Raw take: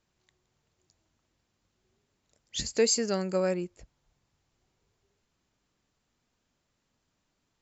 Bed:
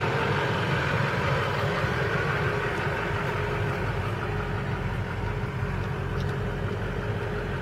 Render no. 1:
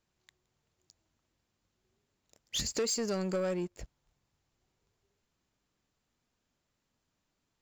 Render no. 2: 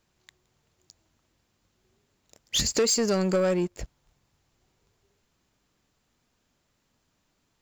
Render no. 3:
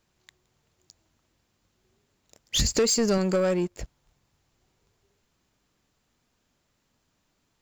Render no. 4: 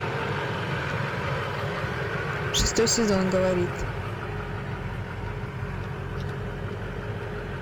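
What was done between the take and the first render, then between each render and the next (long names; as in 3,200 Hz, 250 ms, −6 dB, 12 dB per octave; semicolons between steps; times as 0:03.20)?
downward compressor 2.5 to 1, threshold −39 dBFS, peak gain reduction 13 dB; leveller curve on the samples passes 2
level +8.5 dB
0:02.57–0:03.18: low-shelf EQ 120 Hz +11 dB
mix in bed −3 dB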